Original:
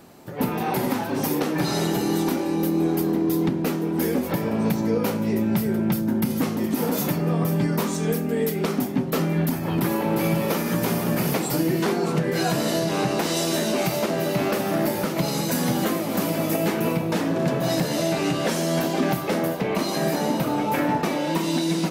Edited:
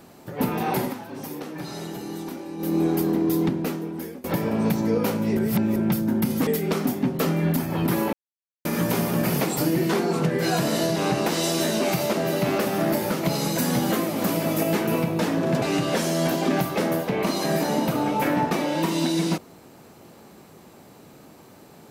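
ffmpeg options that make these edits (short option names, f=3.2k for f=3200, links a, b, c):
-filter_complex "[0:a]asplit=10[a][b][c][d][e][f][g][h][i][j];[a]atrim=end=0.95,asetpts=PTS-STARTPTS,afade=t=out:st=0.79:d=0.16:silence=0.298538[k];[b]atrim=start=0.95:end=2.58,asetpts=PTS-STARTPTS,volume=-10.5dB[l];[c]atrim=start=2.58:end=4.24,asetpts=PTS-STARTPTS,afade=t=in:d=0.16:silence=0.298538,afade=t=out:st=0.85:d=0.81:silence=0.0668344[m];[d]atrim=start=4.24:end=5.372,asetpts=PTS-STARTPTS,afade=t=in:d=0.004:c=hsin:silence=0.0668344[n];[e]atrim=start=5.368:end=5.762,asetpts=PTS-STARTPTS,areverse[o];[f]atrim=start=5.758:end=6.472[p];[g]atrim=start=8.398:end=10.06,asetpts=PTS-STARTPTS,afade=t=out:st=1.658:d=0.004:c=hsin[q];[h]atrim=start=10.06:end=10.58,asetpts=PTS-STARTPTS,volume=0[r];[i]atrim=start=10.58:end=17.552,asetpts=PTS-STARTPTS,afade=t=in:d=0.004:c=hsin[s];[j]atrim=start=18.138[t];[k][l][m][n]concat=n=4:v=0:a=1[u];[u][o]acrossfade=d=0.004:c1=hsin:c2=hsin[v];[v][p]acrossfade=d=0.004:c1=hsin:c2=hsin[w];[q][r][s]concat=n=3:v=0:a=1[x];[w][x]acrossfade=d=0.004:c1=hsin:c2=hsin[y];[y][t]acrossfade=d=0.004:c1=hsin:c2=hsin"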